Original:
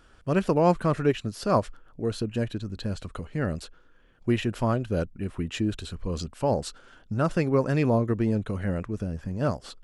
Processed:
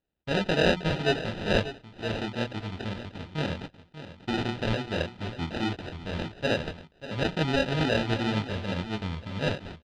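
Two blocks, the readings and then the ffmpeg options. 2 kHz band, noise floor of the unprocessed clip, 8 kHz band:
+6.5 dB, -56 dBFS, -4.0 dB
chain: -filter_complex "[0:a]agate=range=-26dB:threshold=-44dB:ratio=16:detection=peak,highpass=57,highshelf=f=2.7k:g=9,bandreject=f=60:t=h:w=6,bandreject=f=120:t=h:w=6,bandreject=f=180:t=h:w=6,bandreject=f=240:t=h:w=6,bandreject=f=300:t=h:w=6,bandreject=f=360:t=h:w=6,flanger=delay=18.5:depth=7.9:speed=1.9,acrusher=samples=40:mix=1:aa=0.000001,lowpass=f=3.5k:t=q:w=2.1,asplit=2[a][b];[b]aecho=0:1:589:0.224[c];[a][c]amix=inputs=2:normalize=0"

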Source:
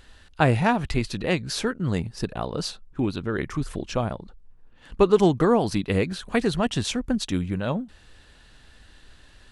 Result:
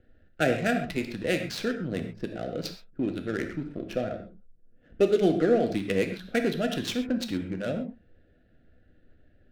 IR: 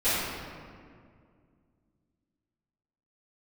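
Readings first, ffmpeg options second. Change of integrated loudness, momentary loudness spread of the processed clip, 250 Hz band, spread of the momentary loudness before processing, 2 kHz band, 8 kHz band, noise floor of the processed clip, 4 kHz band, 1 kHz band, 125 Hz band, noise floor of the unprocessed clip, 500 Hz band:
-3.5 dB, 12 LU, -3.5 dB, 11 LU, -2.0 dB, -7.5 dB, -61 dBFS, -4.5 dB, -8.5 dB, -9.0 dB, -53 dBFS, -2.5 dB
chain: -filter_complex "[0:a]acrossover=split=190|3000[a][b][c];[a]acompressor=threshold=-34dB:ratio=6[d];[d][b][c]amix=inputs=3:normalize=0,asuperstop=centerf=990:order=8:qfactor=1.6,lowshelf=f=74:g=-11,adynamicsmooth=sensitivity=5.5:basefreq=740,asplit=2[e][f];[1:a]atrim=start_sample=2205,atrim=end_sample=6174[g];[f][g]afir=irnorm=-1:irlink=0,volume=-16.5dB[h];[e][h]amix=inputs=2:normalize=0,volume=-3.5dB"

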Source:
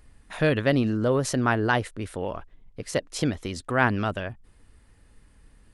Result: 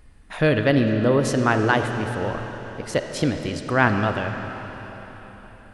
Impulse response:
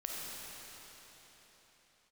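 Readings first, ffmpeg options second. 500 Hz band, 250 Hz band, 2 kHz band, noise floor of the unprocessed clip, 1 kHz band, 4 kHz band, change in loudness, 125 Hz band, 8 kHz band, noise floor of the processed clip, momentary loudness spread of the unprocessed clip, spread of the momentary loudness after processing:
+4.5 dB, +4.0 dB, +4.0 dB, -57 dBFS, +4.0 dB, +3.0 dB, +4.0 dB, +4.0 dB, 0.0 dB, -46 dBFS, 12 LU, 17 LU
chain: -filter_complex "[0:a]asplit=2[a][b];[1:a]atrim=start_sample=2205,lowpass=5.6k[c];[b][c]afir=irnorm=-1:irlink=0,volume=-3.5dB[d];[a][d]amix=inputs=2:normalize=0"

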